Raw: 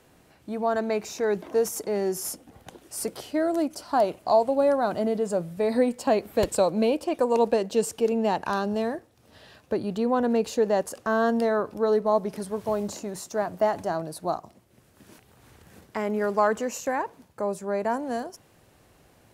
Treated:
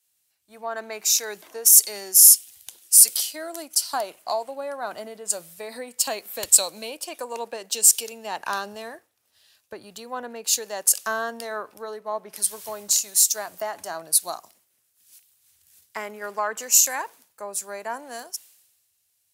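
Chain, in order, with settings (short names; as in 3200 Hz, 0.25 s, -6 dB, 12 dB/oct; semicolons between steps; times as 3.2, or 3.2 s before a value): bell 79 Hz +7 dB 1 oct; compressor 3:1, threshold -27 dBFS, peak gain reduction 9.5 dB; differentiator; maximiser +27.5 dB; three-band expander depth 100%; gain -10 dB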